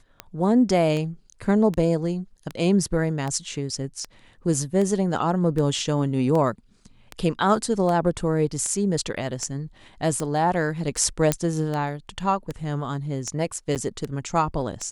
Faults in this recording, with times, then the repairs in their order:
scratch tick 78 rpm −16 dBFS
0:11.32: click −5 dBFS
0:13.75–0:13.76: drop-out 8.4 ms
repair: click removal
repair the gap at 0:13.75, 8.4 ms

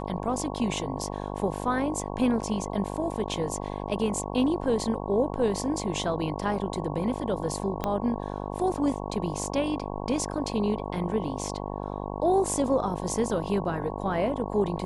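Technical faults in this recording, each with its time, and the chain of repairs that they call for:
mains buzz 50 Hz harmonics 22 −34 dBFS
0:07.84: click −14 dBFS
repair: click removal
hum removal 50 Hz, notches 22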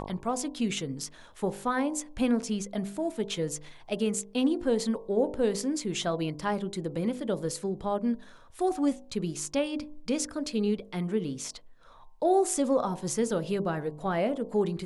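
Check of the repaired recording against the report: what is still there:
0:07.84: click

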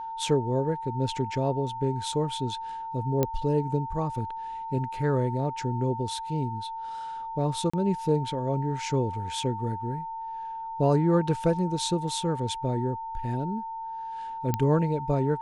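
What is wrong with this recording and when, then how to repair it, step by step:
whistle 900 Hz −33 dBFS
0:03.23: click −11 dBFS
0:07.70–0:07.74: drop-out 35 ms
0:14.54: click −12 dBFS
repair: click removal
notch filter 900 Hz, Q 30
repair the gap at 0:07.70, 35 ms

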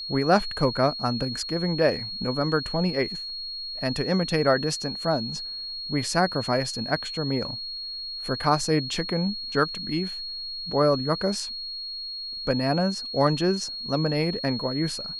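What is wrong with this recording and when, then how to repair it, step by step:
whistle 4,300 Hz −32 dBFS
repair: notch filter 4,300 Hz, Q 30

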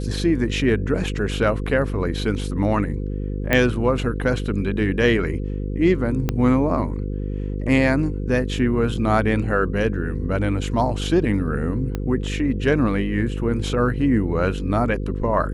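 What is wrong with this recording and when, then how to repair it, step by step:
mains buzz 50 Hz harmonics 10 −26 dBFS
0:03.53: click −5 dBFS
0:06.29: click −8 dBFS
0:11.95: click −13 dBFS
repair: click removal
hum removal 50 Hz, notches 10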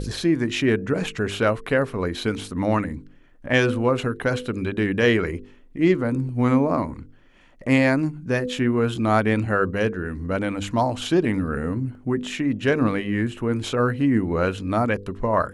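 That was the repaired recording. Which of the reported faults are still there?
0:06.29: click
0:11.95: click

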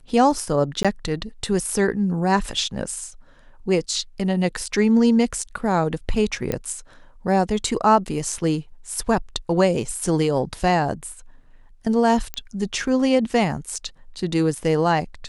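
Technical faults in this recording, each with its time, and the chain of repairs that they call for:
0:00.83–0:00.85: drop-out 16 ms
0:06.52: click −10 dBFS
0:12.34: click −12 dBFS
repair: click removal
repair the gap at 0:00.83, 16 ms

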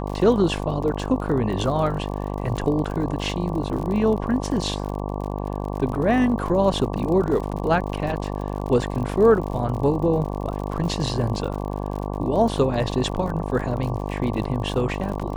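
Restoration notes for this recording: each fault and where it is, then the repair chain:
mains buzz 50 Hz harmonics 23 −28 dBFS
surface crackle 53 per second −30 dBFS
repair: click removal
hum removal 50 Hz, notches 23

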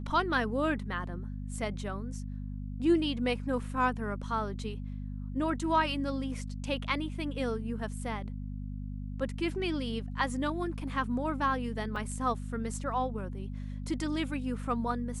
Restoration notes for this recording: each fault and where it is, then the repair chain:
mains hum 50 Hz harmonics 5 −38 dBFS
0:11.96: drop-out 3.1 ms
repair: hum removal 50 Hz, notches 5
repair the gap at 0:11.96, 3.1 ms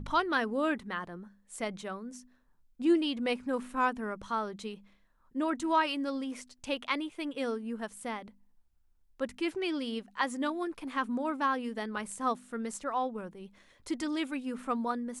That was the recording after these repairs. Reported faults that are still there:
none of them is left

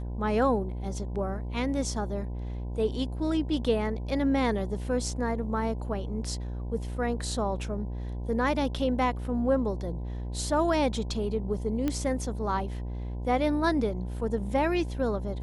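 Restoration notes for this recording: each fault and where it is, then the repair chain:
mains buzz 60 Hz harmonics 17 −34 dBFS
0:11.88: click −16 dBFS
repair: click removal
hum removal 60 Hz, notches 17

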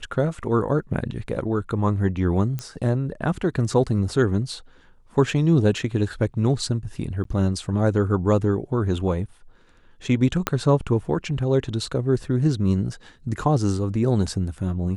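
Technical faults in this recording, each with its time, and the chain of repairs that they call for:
0:02.59: click −16 dBFS
0:07.24–0:07.25: drop-out 13 ms
0:10.47: click −5 dBFS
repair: click removal
repair the gap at 0:07.24, 13 ms

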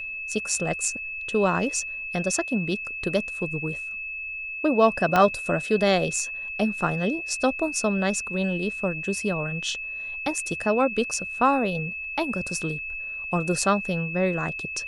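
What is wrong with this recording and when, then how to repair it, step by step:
whistle 2,600 Hz −31 dBFS
0:05.16: click −8 dBFS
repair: click removal
notch filter 2,600 Hz, Q 30

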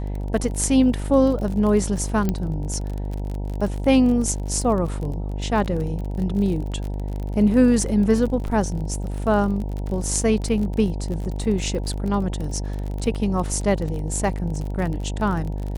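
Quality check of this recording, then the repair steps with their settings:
mains buzz 50 Hz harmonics 19 −27 dBFS
surface crackle 34 per second −28 dBFS
0:02.29: click −10 dBFS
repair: click removal
hum removal 50 Hz, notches 19

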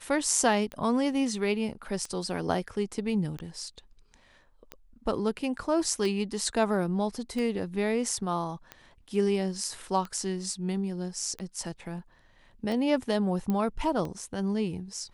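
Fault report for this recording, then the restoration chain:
scratch tick 45 rpm −23 dBFS
0:13.50: click −18 dBFS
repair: click removal

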